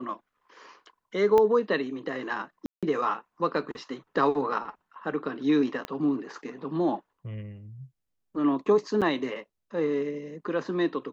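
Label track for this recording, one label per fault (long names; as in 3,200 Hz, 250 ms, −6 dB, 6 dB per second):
1.380000	1.380000	click −13 dBFS
2.660000	2.830000	drop-out 166 ms
5.850000	5.850000	click −18 dBFS
9.010000	9.020000	drop-out 7.5 ms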